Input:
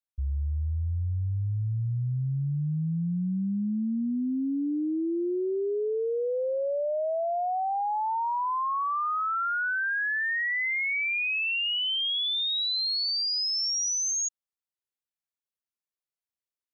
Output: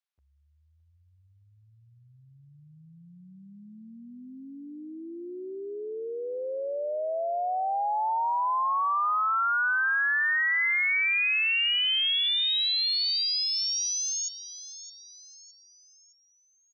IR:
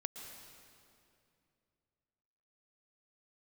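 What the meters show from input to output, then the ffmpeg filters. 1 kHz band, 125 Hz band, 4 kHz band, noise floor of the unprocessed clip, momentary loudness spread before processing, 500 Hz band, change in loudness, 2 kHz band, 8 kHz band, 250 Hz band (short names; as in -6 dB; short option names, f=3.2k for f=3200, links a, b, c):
+1.5 dB, under -25 dB, +2.0 dB, under -85 dBFS, 5 LU, -4.0 dB, +2.5 dB, +3.0 dB, n/a, -15.0 dB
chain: -af "highpass=760,lowpass=5.1k,aecho=1:1:614|1228|1842|2456:0.2|0.0858|0.0369|0.0159,volume=3dB"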